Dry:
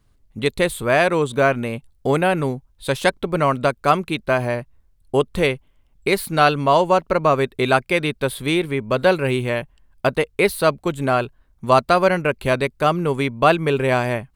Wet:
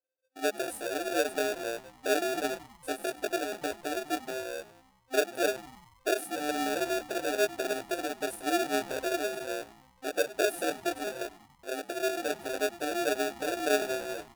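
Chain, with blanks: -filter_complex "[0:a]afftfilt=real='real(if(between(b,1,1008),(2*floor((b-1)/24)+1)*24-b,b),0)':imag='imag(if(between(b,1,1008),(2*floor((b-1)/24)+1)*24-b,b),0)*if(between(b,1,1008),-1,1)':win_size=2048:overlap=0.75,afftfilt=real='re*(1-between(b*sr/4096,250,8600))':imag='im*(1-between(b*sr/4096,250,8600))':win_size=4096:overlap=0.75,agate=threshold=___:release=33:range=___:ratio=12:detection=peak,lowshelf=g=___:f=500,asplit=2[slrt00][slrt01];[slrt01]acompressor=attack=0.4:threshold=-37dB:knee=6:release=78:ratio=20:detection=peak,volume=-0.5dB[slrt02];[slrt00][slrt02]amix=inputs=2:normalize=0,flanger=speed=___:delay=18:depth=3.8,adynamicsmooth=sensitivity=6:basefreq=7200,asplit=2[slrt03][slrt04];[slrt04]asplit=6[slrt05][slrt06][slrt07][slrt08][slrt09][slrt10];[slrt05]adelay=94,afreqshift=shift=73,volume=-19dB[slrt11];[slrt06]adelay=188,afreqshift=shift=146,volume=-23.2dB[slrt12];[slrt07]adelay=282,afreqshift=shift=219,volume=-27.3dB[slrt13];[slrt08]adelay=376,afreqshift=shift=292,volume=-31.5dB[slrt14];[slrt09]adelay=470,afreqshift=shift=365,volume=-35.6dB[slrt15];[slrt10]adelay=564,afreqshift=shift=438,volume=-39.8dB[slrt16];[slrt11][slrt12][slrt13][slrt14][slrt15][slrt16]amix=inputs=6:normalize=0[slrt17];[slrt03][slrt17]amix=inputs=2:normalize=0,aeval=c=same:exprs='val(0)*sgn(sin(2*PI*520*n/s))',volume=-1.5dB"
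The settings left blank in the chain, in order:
-53dB, -23dB, -3.5, 0.53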